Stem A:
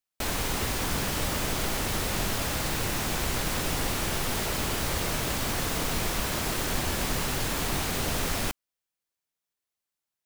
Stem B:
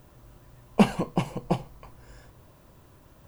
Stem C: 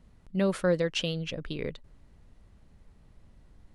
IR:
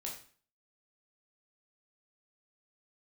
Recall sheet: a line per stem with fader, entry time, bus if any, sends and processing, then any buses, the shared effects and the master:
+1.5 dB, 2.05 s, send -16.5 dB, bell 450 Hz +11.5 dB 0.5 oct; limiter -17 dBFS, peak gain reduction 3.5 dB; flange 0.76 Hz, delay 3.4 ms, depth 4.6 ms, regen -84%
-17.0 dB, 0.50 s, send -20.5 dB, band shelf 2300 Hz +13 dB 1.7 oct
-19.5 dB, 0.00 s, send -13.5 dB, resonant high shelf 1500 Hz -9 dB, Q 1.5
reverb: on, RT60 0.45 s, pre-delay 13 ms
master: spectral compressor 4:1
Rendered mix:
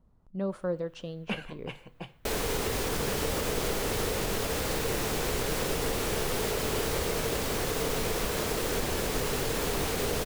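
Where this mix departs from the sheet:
stem C -19.5 dB -> -7.5 dB; master: missing spectral compressor 4:1

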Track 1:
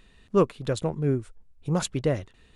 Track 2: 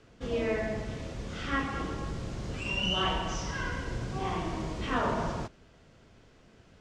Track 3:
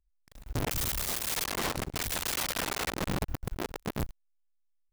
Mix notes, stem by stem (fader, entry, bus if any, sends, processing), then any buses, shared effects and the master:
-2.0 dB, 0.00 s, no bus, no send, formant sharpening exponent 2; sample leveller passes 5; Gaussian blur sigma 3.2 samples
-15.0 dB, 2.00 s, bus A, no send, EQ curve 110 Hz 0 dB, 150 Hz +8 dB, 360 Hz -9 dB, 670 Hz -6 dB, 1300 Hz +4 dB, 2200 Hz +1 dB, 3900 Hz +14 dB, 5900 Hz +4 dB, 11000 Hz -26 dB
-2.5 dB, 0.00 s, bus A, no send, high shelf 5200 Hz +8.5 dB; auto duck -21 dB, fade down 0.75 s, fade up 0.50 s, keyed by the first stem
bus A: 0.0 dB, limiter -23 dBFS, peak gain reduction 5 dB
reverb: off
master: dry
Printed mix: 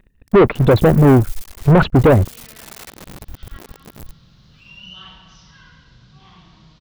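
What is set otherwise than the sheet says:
stem 1 -2.0 dB -> +6.5 dB; stem 3 -2.5 dB -> +8.0 dB

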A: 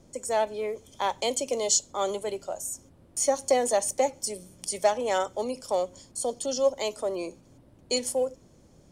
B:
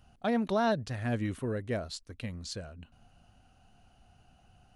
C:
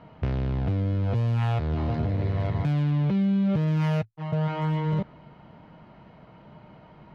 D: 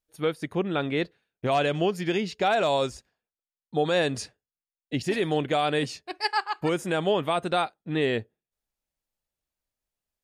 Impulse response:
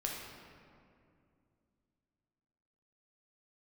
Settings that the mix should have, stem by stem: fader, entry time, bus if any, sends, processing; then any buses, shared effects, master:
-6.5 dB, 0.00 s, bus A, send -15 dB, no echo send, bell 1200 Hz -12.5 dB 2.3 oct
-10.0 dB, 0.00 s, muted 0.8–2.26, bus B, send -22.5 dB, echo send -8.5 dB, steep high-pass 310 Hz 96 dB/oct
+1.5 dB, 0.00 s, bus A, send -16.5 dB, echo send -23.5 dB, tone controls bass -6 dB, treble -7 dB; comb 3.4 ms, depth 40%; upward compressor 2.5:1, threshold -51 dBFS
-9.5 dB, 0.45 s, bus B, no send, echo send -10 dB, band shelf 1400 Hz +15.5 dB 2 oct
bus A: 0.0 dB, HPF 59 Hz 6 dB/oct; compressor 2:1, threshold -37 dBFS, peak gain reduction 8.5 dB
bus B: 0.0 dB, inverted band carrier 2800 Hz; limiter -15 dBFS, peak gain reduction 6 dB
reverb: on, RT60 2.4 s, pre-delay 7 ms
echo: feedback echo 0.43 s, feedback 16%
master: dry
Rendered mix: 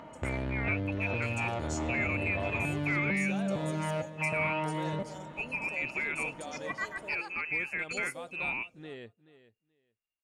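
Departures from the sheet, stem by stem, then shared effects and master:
stem A -6.5 dB -> -14.5 dB; stem D: missing band shelf 1400 Hz +15.5 dB 2 oct

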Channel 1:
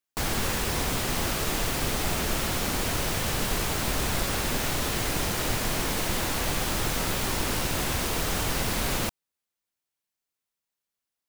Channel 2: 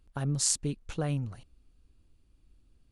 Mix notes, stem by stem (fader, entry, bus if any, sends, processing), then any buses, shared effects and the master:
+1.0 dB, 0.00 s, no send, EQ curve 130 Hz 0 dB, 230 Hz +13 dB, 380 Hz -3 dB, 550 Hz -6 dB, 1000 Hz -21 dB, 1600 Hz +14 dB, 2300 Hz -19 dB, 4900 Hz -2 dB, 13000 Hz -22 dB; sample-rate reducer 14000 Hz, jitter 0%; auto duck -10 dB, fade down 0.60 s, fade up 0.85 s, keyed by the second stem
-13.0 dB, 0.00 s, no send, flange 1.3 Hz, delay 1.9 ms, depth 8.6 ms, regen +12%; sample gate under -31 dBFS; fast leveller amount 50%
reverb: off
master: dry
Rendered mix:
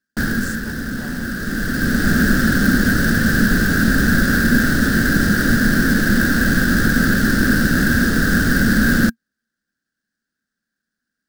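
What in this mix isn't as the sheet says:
stem 1 +1.0 dB -> +10.5 dB; stem 2 -13.0 dB -> -6.0 dB

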